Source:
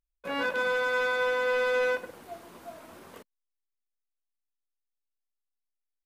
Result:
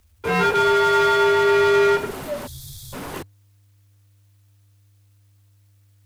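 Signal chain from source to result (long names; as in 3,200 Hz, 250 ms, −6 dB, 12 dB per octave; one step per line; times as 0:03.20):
time-frequency box erased 0:02.47–0:02.93, 240–3,300 Hz
frequency shifter −100 Hz
power curve on the samples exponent 0.7
level +8 dB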